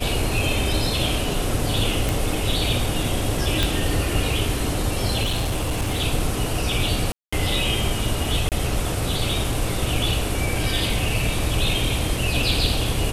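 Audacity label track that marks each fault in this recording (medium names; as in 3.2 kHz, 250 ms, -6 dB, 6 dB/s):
2.090000	2.090000	pop
3.630000	3.630000	pop
5.220000	6.010000	clipped -19 dBFS
7.120000	7.330000	dropout 205 ms
8.490000	8.520000	dropout 28 ms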